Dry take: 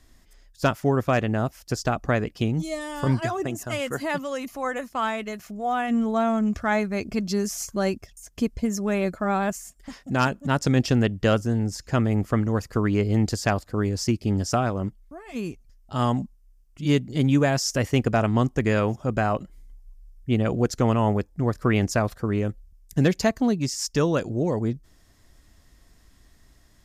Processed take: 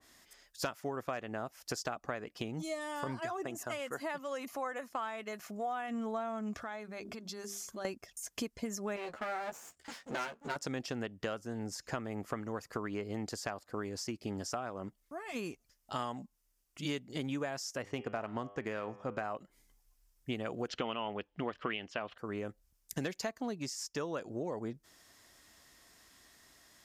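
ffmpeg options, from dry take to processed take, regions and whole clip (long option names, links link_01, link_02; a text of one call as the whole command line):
ffmpeg -i in.wav -filter_complex "[0:a]asettb=1/sr,asplit=3[link_01][link_02][link_03];[link_01]atrim=end=6.574[link_04];[link_02]atrim=start=6.57:end=7.85,asetpts=PTS-STARTPTS,afade=type=in:duration=0.004:curve=qsin,afade=type=out:start_time=1.276:duration=0.004:curve=qsin,equalizer=frequency=3500:width=6.5:gain=8.5,bandreject=frequency=50:width_type=h:width=6,bandreject=frequency=100:width_type=h:width=6,bandreject=frequency=150:width_type=h:width=6,bandreject=frequency=200:width_type=h:width=6,bandreject=frequency=250:width_type=h:width=6,bandreject=frequency=300:width_type=h:width=6,bandreject=frequency=350:width_type=h:width=6,bandreject=frequency=400:width_type=h:width=6,acompressor=threshold=-35dB:ratio=12:attack=3.2:release=140:knee=1:detection=peak[link_05];[link_03]atrim=start=7.846[link_06];[link_04][link_05]acrossfade=duration=0.004:curve1=hsin:curve2=qsin[link_07];[link_07][link_06]acrossfade=duration=0.004:curve1=qsin:curve2=hsin,asettb=1/sr,asplit=3[link_08][link_09][link_10];[link_08]atrim=end=8.964[link_11];[link_09]atrim=start=8.96:end=10.56,asetpts=PTS-STARTPTS,afade=type=in:duration=0.004:curve=qsin,afade=type=out:start_time=1.596:duration=0.004:curve=qsin,lowpass=7300,aeval=exprs='max(val(0),0)':channel_layout=same,asplit=2[link_12][link_13];[link_13]adelay=13,volume=-4.5dB[link_14];[link_12][link_14]amix=inputs=2:normalize=0,atrim=end_sample=70560[link_15];[link_10]atrim=start=10.556[link_16];[link_11][link_15]acrossfade=duration=0.004:curve1=hsin:curve2=qsin[link_17];[link_17][link_16]acrossfade=duration=0.004:curve1=qsin:curve2=hsin,asettb=1/sr,asplit=3[link_18][link_19][link_20];[link_18]atrim=end=17.824[link_21];[link_19]atrim=start=17.82:end=19.24,asetpts=PTS-STARTPTS,afade=type=in:duration=0.004:curve=qsin,afade=type=out:start_time=1.416:duration=0.004:curve=qsin,bandreject=frequency=100.6:width_type=h:width=4,bandreject=frequency=201.2:width_type=h:width=4,bandreject=frequency=301.8:width_type=h:width=4,bandreject=frequency=402.4:width_type=h:width=4,bandreject=frequency=503:width_type=h:width=4,bandreject=frequency=603.6:width_type=h:width=4,bandreject=frequency=704.2:width_type=h:width=4,bandreject=frequency=804.8:width_type=h:width=4,bandreject=frequency=905.4:width_type=h:width=4,bandreject=frequency=1006:width_type=h:width=4,bandreject=frequency=1106.6:width_type=h:width=4,bandreject=frequency=1207.2:width_type=h:width=4,bandreject=frequency=1307.8:width_type=h:width=4,bandreject=frequency=1408.4:width_type=h:width=4,bandreject=frequency=1509:width_type=h:width=4,bandreject=frequency=1609.6:width_type=h:width=4,bandreject=frequency=1710.2:width_type=h:width=4,bandreject=frequency=1810.8:width_type=h:width=4,bandreject=frequency=1911.4:width_type=h:width=4,bandreject=frequency=2012:width_type=h:width=4,bandreject=frequency=2112.6:width_type=h:width=4,bandreject=frequency=2213.2:width_type=h:width=4,bandreject=frequency=2313.8:width_type=h:width=4,bandreject=frequency=2414.4:width_type=h:width=4,bandreject=frequency=2515:width_type=h:width=4,bandreject=frequency=2615.6:width_type=h:width=4,bandreject=frequency=2716.2:width_type=h:width=4,bandreject=frequency=2816.8:width_type=h:width=4,bandreject=frequency=2917.4:width_type=h:width=4,bandreject=frequency=3018:width_type=h:width=4,bandreject=frequency=3118.6:width_type=h:width=4,bandreject=frequency=3219.2:width_type=h:width=4,bandreject=frequency=3319.8:width_type=h:width=4,bandreject=frequency=3420.4:width_type=h:width=4,adynamicsmooth=sensitivity=4.5:basefreq=4600[link_22];[link_20]atrim=start=19.236[link_23];[link_21][link_22]acrossfade=duration=0.004:curve1=hsin:curve2=qsin[link_24];[link_24][link_23]acrossfade=duration=0.004:curve1=qsin:curve2=hsin,asettb=1/sr,asplit=3[link_25][link_26][link_27];[link_25]atrim=end=20.684[link_28];[link_26]atrim=start=20.68:end=22.18,asetpts=PTS-STARTPTS,afade=type=in:duration=0.004:curve=qsin,afade=type=out:start_time=1.496:duration=0.004:curve=qsin,acontrast=69,lowpass=frequency=3000:width_type=q:width=7.2,equalizer=frequency=120:width_type=o:width=0.31:gain=-10[link_29];[link_27]atrim=start=22.176[link_30];[link_28][link_29]acrossfade=duration=0.004:curve1=hsin:curve2=qsin[link_31];[link_31][link_30]acrossfade=duration=0.004:curve1=qsin:curve2=hsin,highpass=frequency=710:poles=1,acompressor=threshold=-37dB:ratio=6,adynamicequalizer=threshold=0.00141:dfrequency=1800:dqfactor=0.7:tfrequency=1800:tqfactor=0.7:attack=5:release=100:ratio=0.375:range=3:mode=cutabove:tftype=highshelf,volume=2.5dB" out.wav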